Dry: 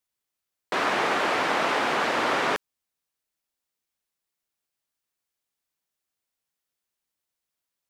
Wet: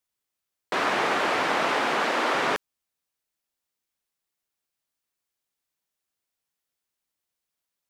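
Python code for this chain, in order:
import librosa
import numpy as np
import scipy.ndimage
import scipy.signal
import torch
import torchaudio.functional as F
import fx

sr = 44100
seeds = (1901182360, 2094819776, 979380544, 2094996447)

y = fx.highpass(x, sr, hz=fx.line((1.81, 110.0), (2.33, 240.0)), slope=24, at=(1.81, 2.33), fade=0.02)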